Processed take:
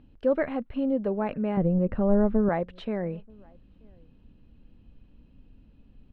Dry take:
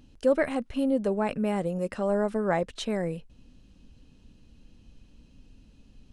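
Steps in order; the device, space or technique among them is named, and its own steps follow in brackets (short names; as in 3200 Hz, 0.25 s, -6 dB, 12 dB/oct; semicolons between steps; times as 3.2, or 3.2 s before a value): 1.57–2.49 RIAA curve playback; shout across a valley (air absorption 410 m; outdoor echo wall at 160 m, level -29 dB)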